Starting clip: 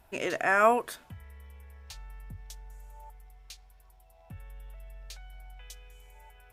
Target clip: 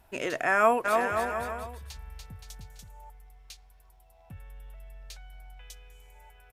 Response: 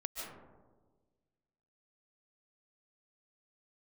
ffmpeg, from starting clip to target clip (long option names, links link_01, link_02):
-filter_complex "[0:a]asplit=3[link_01][link_02][link_03];[link_01]afade=type=out:start_time=0.84:duration=0.02[link_04];[link_02]aecho=1:1:290|522|707.6|856.1|974.9:0.631|0.398|0.251|0.158|0.1,afade=type=in:start_time=0.84:duration=0.02,afade=type=out:start_time=2.87:duration=0.02[link_05];[link_03]afade=type=in:start_time=2.87:duration=0.02[link_06];[link_04][link_05][link_06]amix=inputs=3:normalize=0"